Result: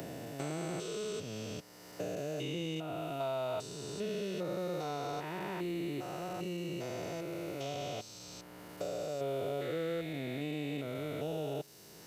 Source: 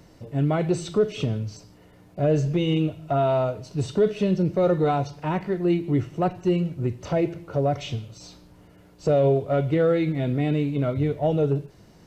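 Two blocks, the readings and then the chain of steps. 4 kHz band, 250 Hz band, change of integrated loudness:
-5.5 dB, -15.0 dB, -14.5 dB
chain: stepped spectrum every 0.4 s; RIAA curve recording; three-band squash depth 70%; gain -7 dB

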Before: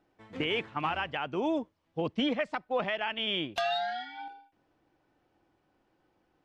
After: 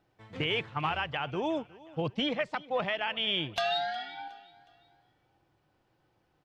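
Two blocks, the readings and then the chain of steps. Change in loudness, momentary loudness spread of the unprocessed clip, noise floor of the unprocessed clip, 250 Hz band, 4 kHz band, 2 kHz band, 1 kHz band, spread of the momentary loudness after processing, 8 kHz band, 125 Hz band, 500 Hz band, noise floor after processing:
+0.5 dB, 10 LU, -74 dBFS, -3.0 dB, +2.0 dB, +0.5 dB, 0.0 dB, 11 LU, n/a, +4.5 dB, -0.5 dB, -73 dBFS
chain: graphic EQ 125/250/4000 Hz +9/-6/+3 dB; on a send: feedback echo 0.364 s, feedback 42%, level -21 dB

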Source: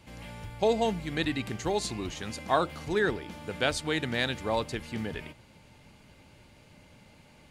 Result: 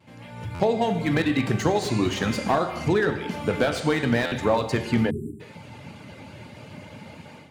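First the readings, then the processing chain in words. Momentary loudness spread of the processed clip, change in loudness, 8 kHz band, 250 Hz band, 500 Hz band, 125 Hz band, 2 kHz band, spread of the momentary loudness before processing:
20 LU, +6.5 dB, +2.0 dB, +9.5 dB, +6.0 dB, +10.0 dB, +4.5 dB, 12 LU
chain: vibrato 0.46 Hz 16 cents; reverb removal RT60 0.76 s; compressor 8:1, threshold -34 dBFS, peak gain reduction 14 dB; high shelf 3900 Hz -9.5 dB; AGC gain up to 16 dB; HPF 89 Hz 24 dB/oct; non-linear reverb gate 0.37 s falling, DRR 6.5 dB; spectral delete 5.1–5.4, 430–7200 Hz; stuck buffer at 0.54/4.26, samples 512, times 4; slew limiter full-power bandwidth 150 Hz

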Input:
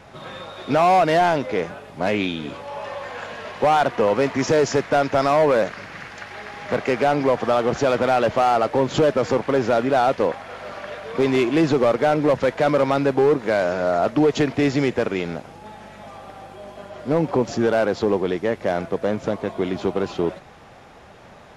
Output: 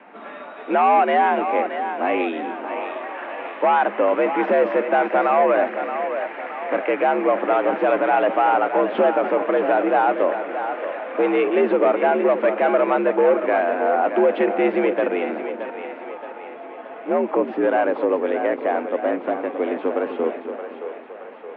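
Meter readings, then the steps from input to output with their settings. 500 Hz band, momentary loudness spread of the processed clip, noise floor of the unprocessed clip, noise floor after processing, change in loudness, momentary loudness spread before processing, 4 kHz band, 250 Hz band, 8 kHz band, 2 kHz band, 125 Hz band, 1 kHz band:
+1.0 dB, 14 LU, -45 dBFS, -37 dBFS, 0.0 dB, 17 LU, n/a, -1.5 dB, under -40 dB, +1.5 dB, under -15 dB, +2.5 dB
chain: split-band echo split 330 Hz, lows 0.255 s, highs 0.623 s, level -8.5 dB; mistuned SSB +68 Hz 160–2700 Hz

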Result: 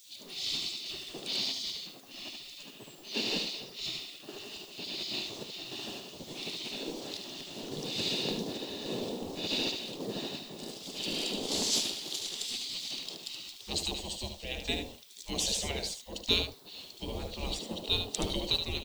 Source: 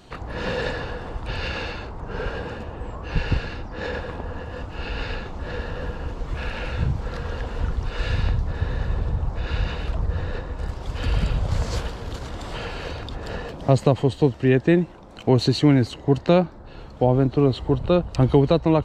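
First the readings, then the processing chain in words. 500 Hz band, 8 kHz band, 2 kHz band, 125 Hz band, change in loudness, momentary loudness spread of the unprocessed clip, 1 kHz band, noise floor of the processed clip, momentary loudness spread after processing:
-16.5 dB, +9.0 dB, -9.5 dB, -23.0 dB, -10.0 dB, 15 LU, -15.5 dB, -51 dBFS, 12 LU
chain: notches 50/100/150/200/250/300/350/400/450 Hz; spectral gate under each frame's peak -20 dB weak; EQ curve 410 Hz 0 dB, 1500 Hz -23 dB, 3500 Hz +4 dB; modulation noise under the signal 26 dB; random-step tremolo, depth 55%; added noise violet -69 dBFS; on a send: echo 74 ms -7 dB; on the sum: gain +7.5 dB

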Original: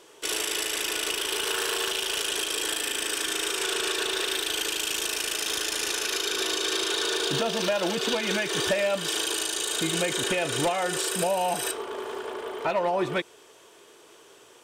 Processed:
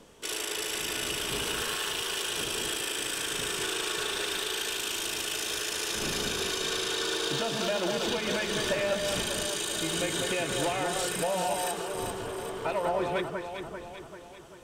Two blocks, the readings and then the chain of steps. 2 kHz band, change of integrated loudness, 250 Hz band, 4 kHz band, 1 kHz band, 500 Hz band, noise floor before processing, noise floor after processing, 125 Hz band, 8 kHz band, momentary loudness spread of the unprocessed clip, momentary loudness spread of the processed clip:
-3.0 dB, -3.5 dB, -2.5 dB, -3.5 dB, -2.5 dB, -2.5 dB, -53 dBFS, -46 dBFS, -0.5 dB, -3.5 dB, 3 LU, 6 LU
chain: wind noise 420 Hz -43 dBFS; echo with dull and thin repeats by turns 0.196 s, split 1800 Hz, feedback 72%, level -3 dB; gain -5 dB

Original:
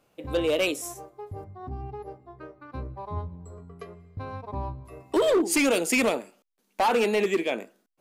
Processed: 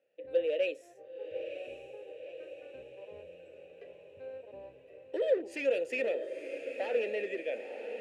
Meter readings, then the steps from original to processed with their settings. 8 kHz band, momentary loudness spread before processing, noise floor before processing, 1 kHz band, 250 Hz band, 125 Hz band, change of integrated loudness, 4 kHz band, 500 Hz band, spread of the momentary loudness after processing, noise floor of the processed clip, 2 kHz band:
under -25 dB, 22 LU, -72 dBFS, -20.0 dB, -17.5 dB, under -25 dB, -8.5 dB, -15.0 dB, -5.5 dB, 21 LU, -56 dBFS, -10.0 dB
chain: vowel filter e; diffused feedback echo 0.959 s, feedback 57%, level -9 dB

